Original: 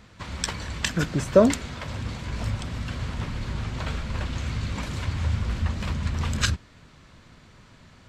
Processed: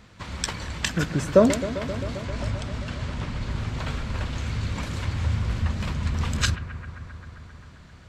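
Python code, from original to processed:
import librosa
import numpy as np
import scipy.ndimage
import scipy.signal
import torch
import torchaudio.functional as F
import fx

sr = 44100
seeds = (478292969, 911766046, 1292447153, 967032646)

y = fx.lowpass(x, sr, hz=9400.0, slope=12, at=(2.22, 3.51))
y = fx.echo_bbd(y, sr, ms=132, stages=2048, feedback_pct=82, wet_db=-13.5)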